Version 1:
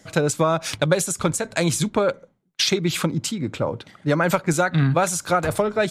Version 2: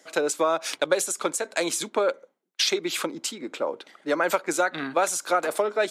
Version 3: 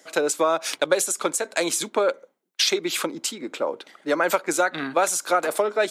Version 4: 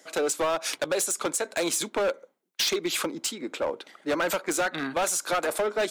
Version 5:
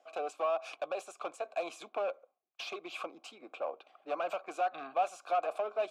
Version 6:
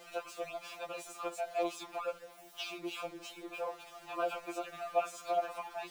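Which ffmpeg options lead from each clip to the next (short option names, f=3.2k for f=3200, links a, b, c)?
-af "highpass=f=310:w=0.5412,highpass=f=310:w=1.3066,volume=-2.5dB"
-af "highshelf=f=11k:g=4.5,volume=2dB"
-af "volume=20dB,asoftclip=hard,volume=-20dB,volume=-1.5dB"
-filter_complex "[0:a]asplit=3[a][b][c];[a]bandpass=f=730:t=q:w=8,volume=0dB[d];[b]bandpass=f=1.09k:t=q:w=8,volume=-6dB[e];[c]bandpass=f=2.44k:t=q:w=8,volume=-9dB[f];[d][e][f]amix=inputs=3:normalize=0,volume=2dB"
-af "aeval=exprs='val(0)+0.5*0.00473*sgn(val(0))':c=same,afftfilt=real='re*2.83*eq(mod(b,8),0)':imag='im*2.83*eq(mod(b,8),0)':win_size=2048:overlap=0.75,volume=1dB"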